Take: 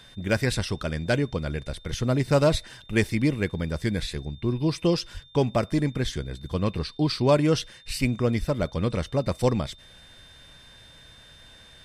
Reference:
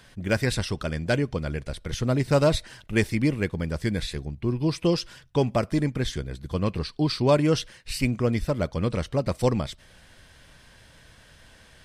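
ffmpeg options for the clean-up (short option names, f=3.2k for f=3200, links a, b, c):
-filter_complex "[0:a]bandreject=f=3.6k:w=30,asplit=3[a][b][c];[a]afade=t=out:st=5.13:d=0.02[d];[b]highpass=f=140:w=0.5412,highpass=f=140:w=1.3066,afade=t=in:st=5.13:d=0.02,afade=t=out:st=5.25:d=0.02[e];[c]afade=t=in:st=5.25:d=0.02[f];[d][e][f]amix=inputs=3:normalize=0,asplit=3[g][h][i];[g]afade=t=out:st=8.59:d=0.02[j];[h]highpass=f=140:w=0.5412,highpass=f=140:w=1.3066,afade=t=in:st=8.59:d=0.02,afade=t=out:st=8.71:d=0.02[k];[i]afade=t=in:st=8.71:d=0.02[l];[j][k][l]amix=inputs=3:normalize=0"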